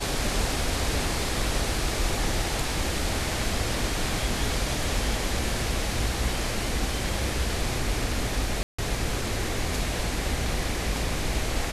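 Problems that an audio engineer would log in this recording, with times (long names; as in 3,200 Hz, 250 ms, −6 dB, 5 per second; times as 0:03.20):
0:08.63–0:08.79: drop-out 155 ms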